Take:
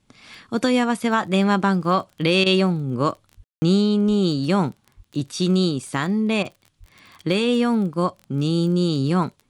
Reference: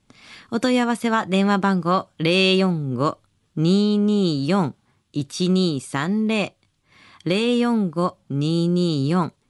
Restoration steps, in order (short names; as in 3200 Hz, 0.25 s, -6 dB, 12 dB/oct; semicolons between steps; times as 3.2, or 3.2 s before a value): de-click; de-plosive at 3.36/4.07/4.96/6.79; room tone fill 3.44–3.62; interpolate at 2.44/6.43, 20 ms